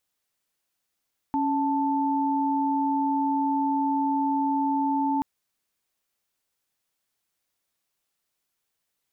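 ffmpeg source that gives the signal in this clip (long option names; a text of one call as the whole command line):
ffmpeg -f lavfi -i "aevalsrc='0.0596*(sin(2*PI*277.18*t)+sin(2*PI*880*t))':duration=3.88:sample_rate=44100" out.wav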